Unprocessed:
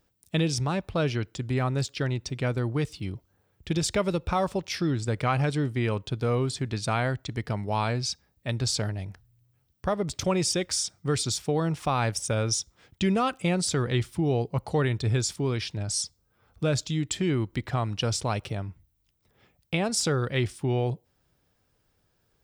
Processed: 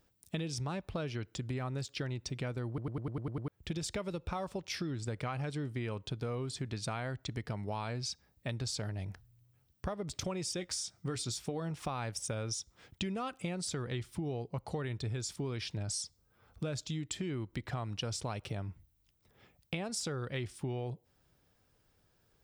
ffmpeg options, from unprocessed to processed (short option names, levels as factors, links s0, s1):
-filter_complex "[0:a]asettb=1/sr,asplit=3[s0][s1][s2];[s0]atrim=end=10.574[s3];[s1]atrim=start=10.57:end=11.71,asetpts=PTS-STARTPTS,afade=t=in:d=0.004:c=qsin,afade=t=out:st=1.136:d=0.004:c=qsin,asplit=2[s4][s5];[s5]adelay=17,volume=0.299[s6];[s4][s6]amix=inputs=2:normalize=0,atrim=end_sample=50274[s7];[s2]atrim=start=11.706[s8];[s3][s7]acrossfade=d=0.004:c1=hsin:c2=qsin[s9];[s9][s8]acrossfade=d=0.004:c1=qsin:c2=hsin,asplit=9[s10][s11][s12][s13][s14][s15][s16][s17][s18];[s10]atrim=end=2.782[s19];[s11]atrim=start=2.678:end=2.782[s20];[s12]atrim=start=2.678:end=2.782[s21];[s13]atrim=start=2.678:end=2.782[s22];[s14]atrim=start=2.678:end=2.782[s23];[s15]atrim=start=2.678:end=2.782[s24];[s16]atrim=start=2.678:end=2.782[s25];[s17]atrim=start=2.678:end=2.782[s26];[s18]atrim=start=3.478[s27];[s19][s20]acrossfade=d=0.004:c1=hsin:c2=hsin[s28];[s28][s21]acrossfade=d=0.004:c1=hsin:c2=hsin[s29];[s29][s22]acrossfade=d=0.004:c1=hsin:c2=hsin[s30];[s30][s23]acrossfade=d=0.004:c1=hsin:c2=hsin[s31];[s31][s24]acrossfade=d=0.004:c1=hsin:c2=hsin[s32];[s32][s25]acrossfade=d=0.004:c1=hsin:c2=hsin[s33];[s33][s26]acrossfade=d=0.004:c1=hsin:c2=hsin[s34];[s34][s27]acrossfade=d=0.004:c1=hsin:c2=hsin,acompressor=threshold=0.02:ratio=6,volume=0.891"